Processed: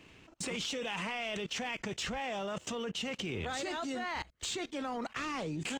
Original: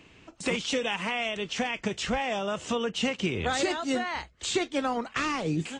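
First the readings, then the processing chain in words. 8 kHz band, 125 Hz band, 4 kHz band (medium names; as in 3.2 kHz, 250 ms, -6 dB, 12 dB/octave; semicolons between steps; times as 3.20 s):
-4.5 dB, -7.5 dB, -6.0 dB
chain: level held to a coarse grid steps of 20 dB; waveshaping leveller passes 1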